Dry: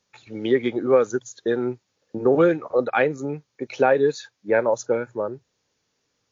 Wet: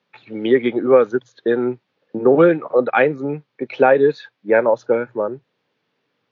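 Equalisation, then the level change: HPF 130 Hz 24 dB/oct; LPF 3500 Hz 24 dB/oct; +5.0 dB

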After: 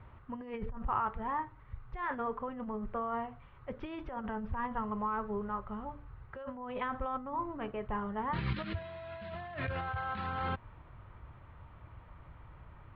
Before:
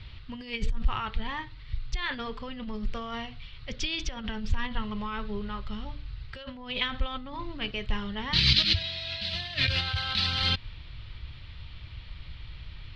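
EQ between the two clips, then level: LPF 1100 Hz 24 dB/oct; tilt +4 dB/oct; +5.5 dB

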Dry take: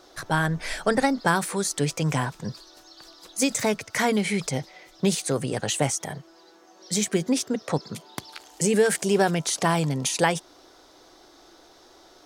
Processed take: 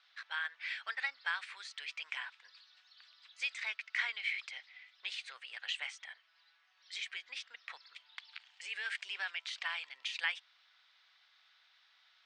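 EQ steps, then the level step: ladder high-pass 1800 Hz, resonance 25%; steep low-pass 8900 Hz 72 dB/oct; air absorption 410 m; +6.0 dB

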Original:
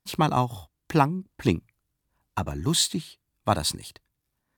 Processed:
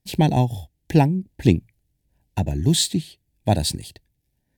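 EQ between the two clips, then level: Butterworth band-stop 1200 Hz, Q 1.4; low shelf 270 Hz +8 dB; +2.0 dB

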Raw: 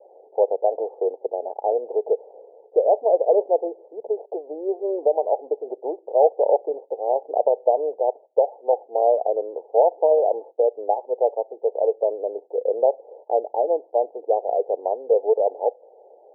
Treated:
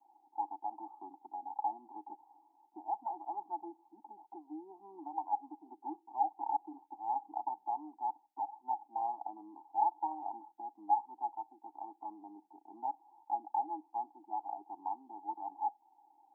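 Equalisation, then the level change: Chebyshev band-stop 310–840 Hz, order 4; bell 250 Hz -4 dB; 0.0 dB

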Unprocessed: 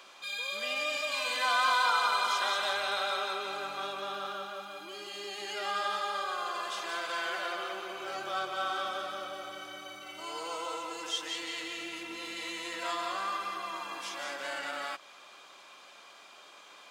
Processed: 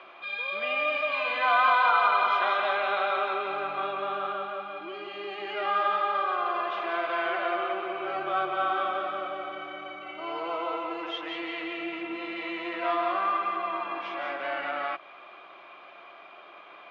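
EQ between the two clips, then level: speaker cabinet 130–3000 Hz, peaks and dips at 150 Hz +7 dB, 350 Hz +9 dB, 680 Hz +10 dB, 1200 Hz +6 dB, 2300 Hz +5 dB; +1.5 dB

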